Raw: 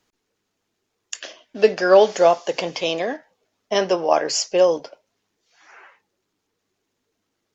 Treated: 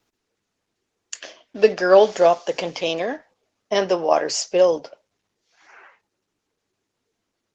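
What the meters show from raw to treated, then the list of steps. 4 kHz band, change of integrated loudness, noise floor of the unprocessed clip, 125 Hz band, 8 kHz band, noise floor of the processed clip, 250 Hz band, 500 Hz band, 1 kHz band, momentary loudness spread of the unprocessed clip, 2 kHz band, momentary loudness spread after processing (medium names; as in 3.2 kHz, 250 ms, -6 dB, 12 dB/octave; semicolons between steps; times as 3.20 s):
-2.0 dB, -0.5 dB, -77 dBFS, 0.0 dB, no reading, -79 dBFS, -0.5 dB, 0.0 dB, -0.5 dB, 19 LU, -0.5 dB, 21 LU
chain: Opus 16 kbps 48 kHz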